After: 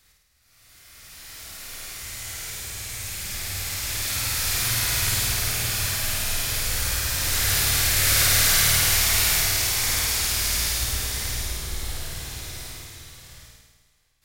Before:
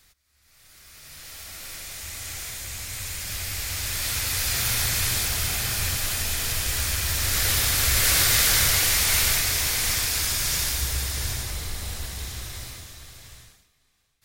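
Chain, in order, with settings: flutter echo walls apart 9 m, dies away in 1.2 s; gain -2.5 dB

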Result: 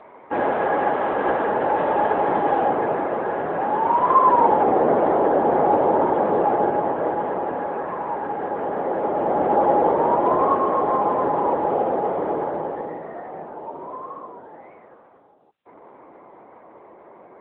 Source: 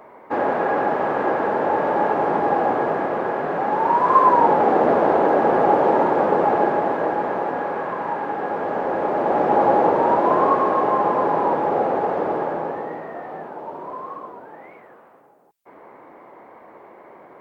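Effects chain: high shelf 3100 Hz +8 dB, from 2.67 s -3 dB, from 4.63 s -11.5 dB; AMR-NB 10.2 kbps 8000 Hz

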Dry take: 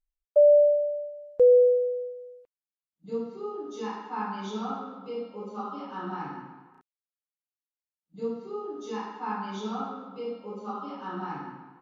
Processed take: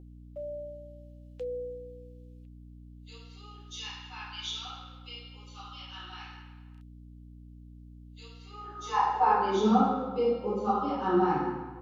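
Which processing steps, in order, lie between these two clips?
high-pass sweep 3000 Hz -> 77 Hz, 8.42–10.26; hum 60 Hz, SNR 14 dB; small resonant body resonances 360/510/760 Hz, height 12 dB, ringing for 85 ms; gain +4.5 dB

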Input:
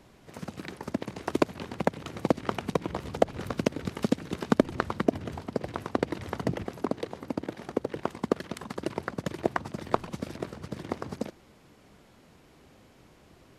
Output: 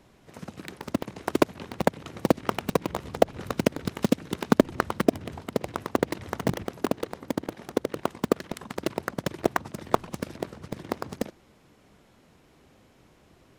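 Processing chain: notch 4600 Hz, Q 30; in parallel at -3 dB: bit-crush 4-bit; on the sum: gain -1.5 dB

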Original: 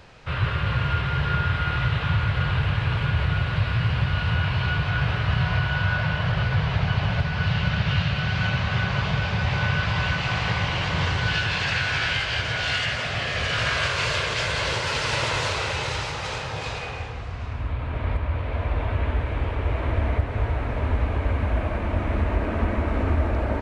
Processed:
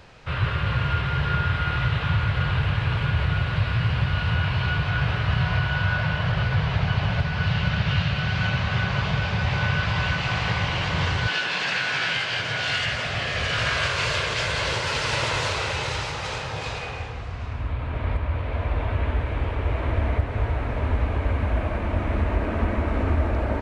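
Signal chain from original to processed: 11.27–12.79 HPF 230 Hz -> 95 Hz 24 dB/oct

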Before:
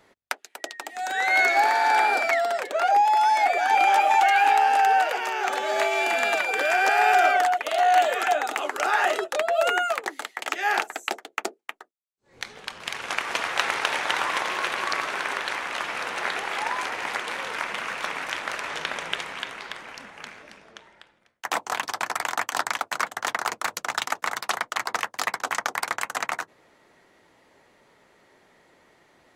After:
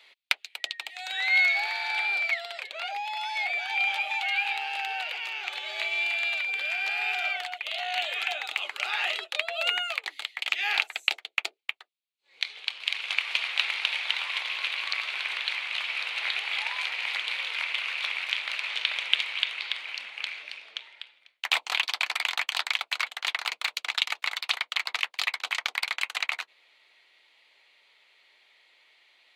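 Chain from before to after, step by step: Bessel high-pass 860 Hz, order 2; band shelf 3100 Hz +15 dB 1.3 oct; vocal rider 2 s; gain -12 dB

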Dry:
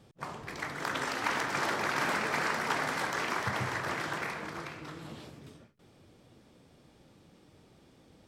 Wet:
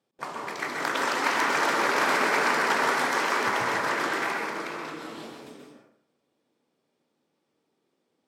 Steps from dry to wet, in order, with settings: HPF 280 Hz 12 dB/oct; gate with hold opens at -50 dBFS; plate-style reverb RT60 0.68 s, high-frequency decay 0.55×, pre-delay 0.115 s, DRR 1 dB; gain +5 dB

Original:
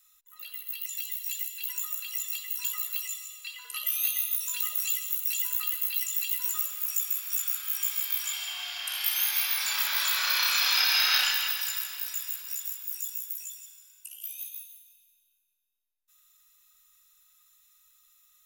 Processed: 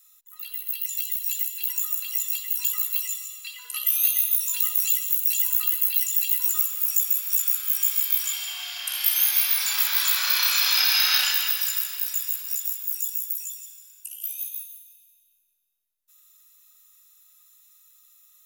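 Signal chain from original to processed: high shelf 5300 Hz +7.5 dB

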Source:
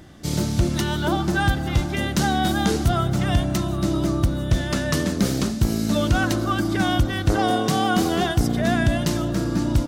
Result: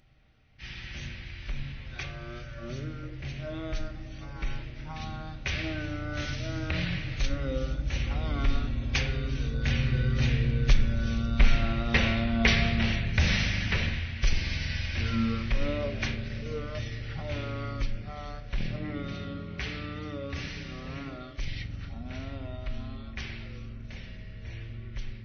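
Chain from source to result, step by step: Doppler pass-by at 4.53, 5 m/s, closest 3.8 m; resonant high shelf 4100 Hz +6.5 dB, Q 1.5; wide varispeed 0.391×; on a send: reverb RT60 0.70 s, pre-delay 5 ms, DRR 9 dB; on the sum: gain -2.5 dB

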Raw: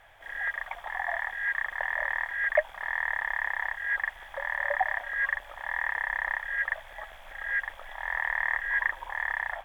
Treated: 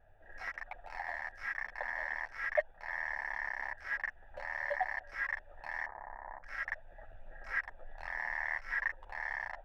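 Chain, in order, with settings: Wiener smoothing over 41 samples; chorus voices 6, 1.1 Hz, delay 11 ms, depth 3 ms; in parallel at +2.5 dB: compressor, threshold -43 dBFS, peak gain reduction 21.5 dB; 5.86–6.44 on the sum: LPF 1100 Hz 24 dB/oct; gain -5.5 dB

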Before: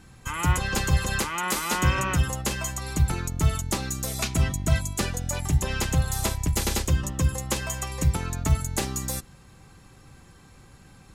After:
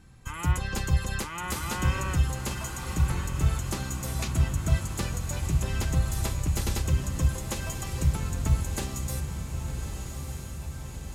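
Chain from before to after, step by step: low shelf 160 Hz +6.5 dB; diffused feedback echo 1.245 s, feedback 62%, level -7 dB; gain -7 dB

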